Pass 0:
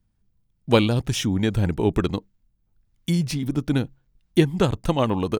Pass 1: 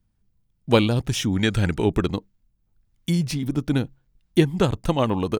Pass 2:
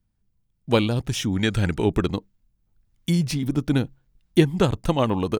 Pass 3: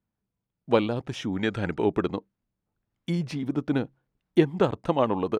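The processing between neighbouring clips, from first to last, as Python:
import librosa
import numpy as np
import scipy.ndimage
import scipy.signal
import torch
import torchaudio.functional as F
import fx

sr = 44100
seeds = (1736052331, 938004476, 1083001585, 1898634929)

y1 = fx.spec_box(x, sr, start_s=1.33, length_s=0.52, low_hz=1200.0, high_hz=10000.0, gain_db=7)
y2 = fx.rider(y1, sr, range_db=10, speed_s=2.0)
y3 = fx.bandpass_q(y2, sr, hz=690.0, q=0.51)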